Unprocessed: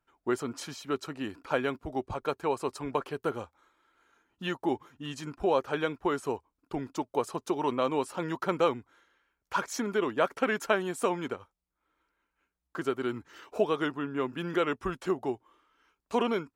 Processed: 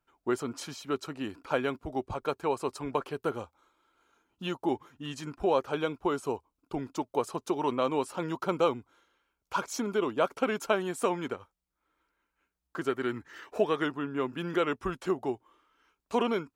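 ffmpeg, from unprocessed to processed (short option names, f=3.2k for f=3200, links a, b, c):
-af "asetnsamples=n=441:p=0,asendcmd='3.41 equalizer g -11;4.69 equalizer g -1;5.67 equalizer g -10.5;6.78 equalizer g -3;8.26 equalizer g -10.5;10.78 equalizer g -0.5;12.89 equalizer g 9;13.83 equalizer g -1.5',equalizer=f=1.8k:t=o:w=0.32:g=-3"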